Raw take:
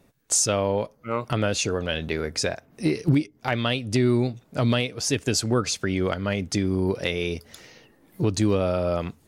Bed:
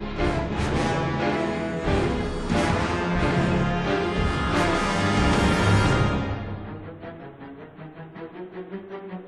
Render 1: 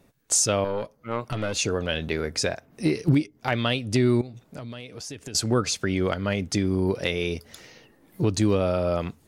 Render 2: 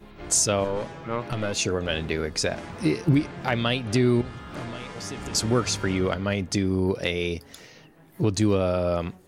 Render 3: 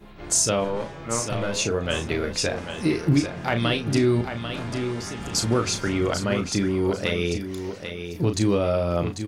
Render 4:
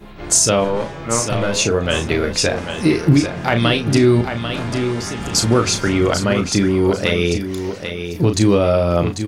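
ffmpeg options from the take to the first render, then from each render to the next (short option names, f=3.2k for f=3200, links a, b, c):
-filter_complex "[0:a]asettb=1/sr,asplit=3[a][b][c];[a]atrim=end=0.644[d];[b]atrim=start=0.64:end=1.57,asetpts=PTS-STARTPTS,afade=t=in:d=0.004:c=qsin,afade=t=out:st=0.926:d=0.004:c=qsin,aeval=exprs='(tanh(6.31*val(0)+0.55)-tanh(0.55))/6.31':c=same[e];[c]atrim=start=1.566[f];[d][e]acrossfade=d=0.004:c1=hsin:c2=qsin[g];[g][f]acrossfade=d=0.004:c1=qsin:c2=hsin,asettb=1/sr,asplit=3[h][i][j];[h]atrim=end=4.214[k];[i]atrim=start=4.21:end=5.35,asetpts=PTS-STARTPTS,afade=t=in:d=0.004:c=qsin,afade=t=out:st=1.136:d=0.004:c=qsin,acompressor=threshold=-35dB:ratio=5:attack=3.2:release=140:knee=1:detection=peak[l];[j]atrim=start=5.346[m];[k][l]acrossfade=d=0.004:c1=hsin:c2=qsin[n];[n][m]acrossfade=d=0.004:c1=qsin:c2=hsin"
-filter_complex "[1:a]volume=-16dB[a];[0:a][a]amix=inputs=2:normalize=0"
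-filter_complex "[0:a]asplit=2[a][b];[b]adelay=35,volume=-7.5dB[c];[a][c]amix=inputs=2:normalize=0,aecho=1:1:794|1588|2382:0.376|0.0902|0.0216"
-af "volume=7.5dB,alimiter=limit=-3dB:level=0:latency=1"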